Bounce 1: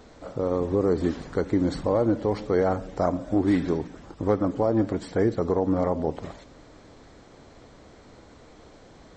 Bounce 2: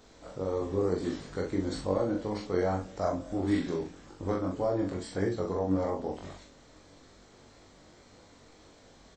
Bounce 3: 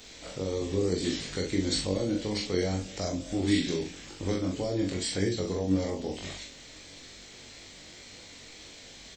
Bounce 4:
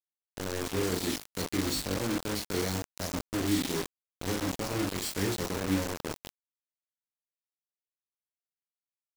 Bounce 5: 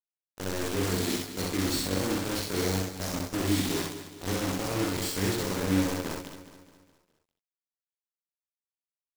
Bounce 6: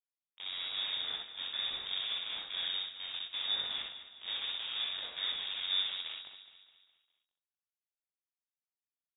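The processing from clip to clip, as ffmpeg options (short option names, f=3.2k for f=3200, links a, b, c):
-filter_complex "[0:a]highshelf=f=2.9k:g=9,flanger=delay=19.5:depth=3.2:speed=1.7,asplit=2[a][b];[b]adelay=42,volume=-4dB[c];[a][c]amix=inputs=2:normalize=0,volume=-5.5dB"
-filter_complex "[0:a]highshelf=f=1.7k:t=q:w=1.5:g=10,acrossover=split=480|2700[a][b][c];[b]acompressor=threshold=-44dB:ratio=6[d];[a][d][c]amix=inputs=3:normalize=0,volume=3dB"
-filter_complex "[0:a]acrossover=split=340|420|4100[a][b][c][d];[c]asoftclip=type=hard:threshold=-40dB[e];[a][b][e][d]amix=inputs=4:normalize=0,acrusher=bits=4:mix=0:aa=0.000001,volume=-2.5dB"
-filter_complex "[0:a]asplit=2[a][b];[b]aecho=0:1:63|74|201:0.668|0.355|0.168[c];[a][c]amix=inputs=2:normalize=0,agate=range=-33dB:threshold=-39dB:ratio=3:detection=peak,asplit=2[d][e];[e]aecho=0:1:208|416|624|832|1040:0.224|0.107|0.0516|0.0248|0.0119[f];[d][f]amix=inputs=2:normalize=0"
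-af "lowpass=f=3.2k:t=q:w=0.5098,lowpass=f=3.2k:t=q:w=0.6013,lowpass=f=3.2k:t=q:w=0.9,lowpass=f=3.2k:t=q:w=2.563,afreqshift=-3800,volume=-8dB"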